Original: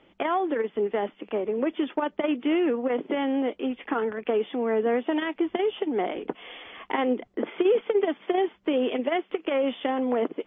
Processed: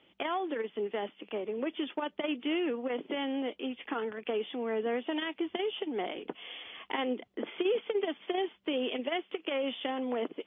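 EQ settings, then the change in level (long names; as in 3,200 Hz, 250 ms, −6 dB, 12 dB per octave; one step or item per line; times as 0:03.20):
high-pass filter 61 Hz
parametric band 3,100 Hz +9 dB 0.89 octaves
−8.0 dB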